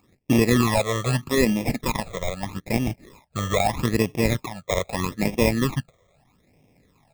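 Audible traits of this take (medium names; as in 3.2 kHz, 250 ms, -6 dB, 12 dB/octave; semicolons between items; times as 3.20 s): aliases and images of a low sample rate 1.5 kHz, jitter 0%; phasing stages 12, 0.79 Hz, lowest notch 260–1400 Hz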